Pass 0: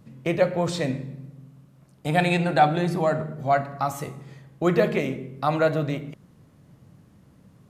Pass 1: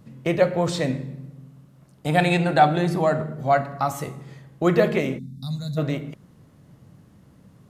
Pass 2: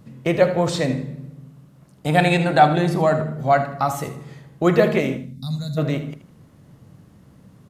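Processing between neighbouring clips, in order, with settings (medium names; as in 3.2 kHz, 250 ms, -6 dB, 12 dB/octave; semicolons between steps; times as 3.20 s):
time-frequency box 5.18–5.78 s, 270–3500 Hz -28 dB; band-stop 2.4 kHz, Q 27; trim +2 dB
feedback delay 78 ms, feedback 27%, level -13 dB; trim +2.5 dB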